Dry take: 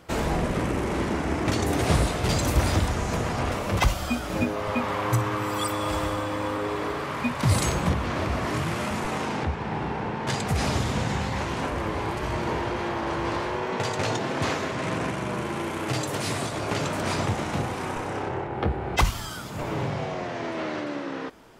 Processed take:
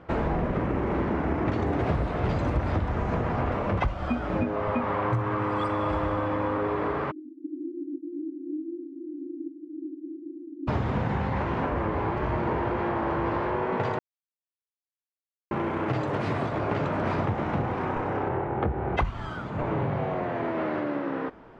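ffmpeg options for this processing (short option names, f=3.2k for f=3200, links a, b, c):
-filter_complex "[0:a]asplit=3[a][b][c];[a]afade=t=out:st=7.1:d=0.02[d];[b]asuperpass=centerf=310:order=12:qfactor=3.7,afade=t=in:st=7.1:d=0.02,afade=t=out:st=10.67:d=0.02[e];[c]afade=t=in:st=10.67:d=0.02[f];[d][e][f]amix=inputs=3:normalize=0,asettb=1/sr,asplit=3[g][h][i];[g]atrim=end=18.234[j];[h]atrim=start=18.23:end=20.49,asetpts=PTS-STARTPTS,afade=t=in:d=0.004:c=qsin,afade=t=out:st=2.256:d=0.004:c=qsin,bandreject=f=5.2k:w=8.6[k];[i]atrim=start=20.486[l];[j][k]acrossfade=d=0.004:c1=hsin:c2=qsin[m];[m][l]acrossfade=d=0.004:c1=qsin:c2=hsin,asplit=3[n][o][p];[n]atrim=end=13.99,asetpts=PTS-STARTPTS,afade=t=out:st=13.986:d=0.004:c=hsin[q];[o]atrim=start=13.99:end=15.51,asetpts=PTS-STARTPTS,volume=0[r];[p]atrim=start=15.51,asetpts=PTS-STARTPTS,afade=t=in:d=0.004:c=hsin[s];[q][r][s]concat=n=3:v=0:a=1,lowpass=1.7k,acompressor=threshold=-26dB:ratio=4,volume=3dB"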